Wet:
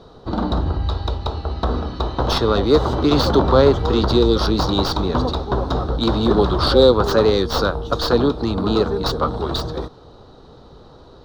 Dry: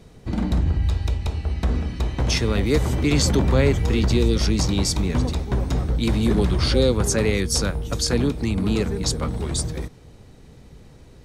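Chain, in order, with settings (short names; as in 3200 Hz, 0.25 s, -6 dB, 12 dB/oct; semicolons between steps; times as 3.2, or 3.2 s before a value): tracing distortion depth 0.15 ms; EQ curve 190 Hz 0 dB, 360 Hz +8 dB, 1300 Hz +14 dB, 2200 Hz -10 dB, 3900 Hz +11 dB, 8100 Hz -13 dB; gain -1 dB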